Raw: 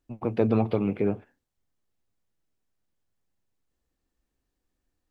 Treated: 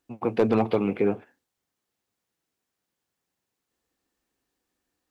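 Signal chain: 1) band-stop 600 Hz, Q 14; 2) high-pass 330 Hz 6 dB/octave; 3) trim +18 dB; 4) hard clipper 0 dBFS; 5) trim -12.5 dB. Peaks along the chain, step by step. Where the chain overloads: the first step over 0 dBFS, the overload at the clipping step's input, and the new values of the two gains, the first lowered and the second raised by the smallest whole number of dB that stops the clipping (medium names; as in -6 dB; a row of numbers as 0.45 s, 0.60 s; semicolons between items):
-10.5 dBFS, -13.0 dBFS, +5.0 dBFS, 0.0 dBFS, -12.5 dBFS; step 3, 5.0 dB; step 3 +13 dB, step 5 -7.5 dB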